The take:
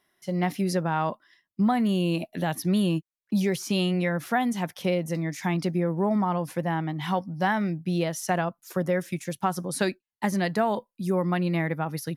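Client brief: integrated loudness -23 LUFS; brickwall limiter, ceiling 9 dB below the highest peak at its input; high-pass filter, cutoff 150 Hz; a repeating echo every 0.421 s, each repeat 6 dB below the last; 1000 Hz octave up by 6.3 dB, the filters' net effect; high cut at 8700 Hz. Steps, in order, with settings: HPF 150 Hz; LPF 8700 Hz; bell 1000 Hz +8.5 dB; limiter -15 dBFS; feedback echo 0.421 s, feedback 50%, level -6 dB; gain +3.5 dB

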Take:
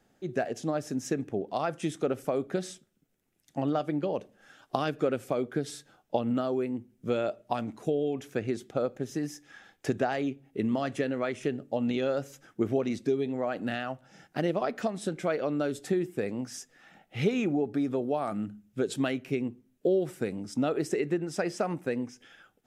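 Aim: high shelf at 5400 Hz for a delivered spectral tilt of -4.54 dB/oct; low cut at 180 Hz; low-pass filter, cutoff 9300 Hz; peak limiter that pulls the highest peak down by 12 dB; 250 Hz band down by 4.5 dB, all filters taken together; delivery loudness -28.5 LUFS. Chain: HPF 180 Hz; LPF 9300 Hz; bell 250 Hz -4.5 dB; high shelf 5400 Hz +5.5 dB; gain +7.5 dB; limiter -16 dBFS

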